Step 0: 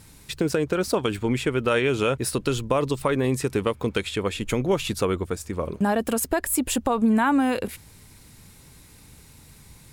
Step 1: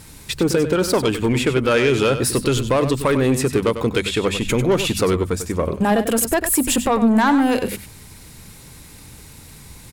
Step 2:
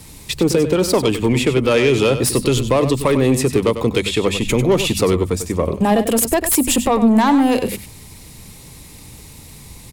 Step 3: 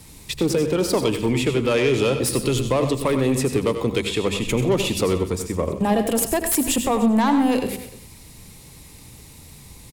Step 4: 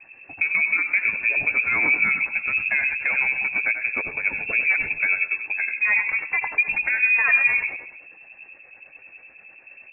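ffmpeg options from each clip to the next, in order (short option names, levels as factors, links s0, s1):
-af "bandreject=f=50:t=h:w=6,bandreject=f=100:t=h:w=6,bandreject=f=150:t=h:w=6,bandreject=f=200:t=h:w=6,bandreject=f=250:t=h:w=6,asoftclip=type=tanh:threshold=0.119,aecho=1:1:97:0.299,volume=2.51"
-filter_complex "[0:a]equalizer=f=1500:w=4:g=-9.5,acrossover=split=190|620|2900[s0][s1][s2][s3];[s3]aeval=exprs='(mod(3.35*val(0)+1,2)-1)/3.35':c=same[s4];[s0][s1][s2][s4]amix=inputs=4:normalize=0,volume=1.33"
-af "aecho=1:1:82|129|300:0.224|0.178|0.106,volume=0.562"
-filter_complex "[0:a]acrossover=split=530[s0][s1];[s0]aeval=exprs='val(0)*(1-0.7/2+0.7/2*cos(2*PI*9.4*n/s))':c=same[s2];[s1]aeval=exprs='val(0)*(1-0.7/2-0.7/2*cos(2*PI*9.4*n/s))':c=same[s3];[s2][s3]amix=inputs=2:normalize=0,flanger=delay=1.1:depth=2.3:regen=-61:speed=0.36:shape=sinusoidal,lowpass=f=2300:t=q:w=0.5098,lowpass=f=2300:t=q:w=0.6013,lowpass=f=2300:t=q:w=0.9,lowpass=f=2300:t=q:w=2.563,afreqshift=-2700,volume=2"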